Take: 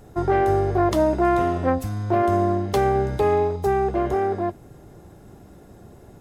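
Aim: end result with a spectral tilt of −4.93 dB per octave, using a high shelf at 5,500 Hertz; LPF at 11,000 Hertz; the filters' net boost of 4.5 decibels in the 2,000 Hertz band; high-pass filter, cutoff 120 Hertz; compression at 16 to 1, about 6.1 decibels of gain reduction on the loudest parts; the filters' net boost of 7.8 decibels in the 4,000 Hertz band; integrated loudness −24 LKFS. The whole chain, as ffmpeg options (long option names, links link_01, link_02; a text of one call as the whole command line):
ffmpeg -i in.wav -af "highpass=120,lowpass=11000,equalizer=frequency=2000:width_type=o:gain=4,equalizer=frequency=4000:width_type=o:gain=7,highshelf=frequency=5500:gain=4,acompressor=threshold=-21dB:ratio=16,volume=2dB" out.wav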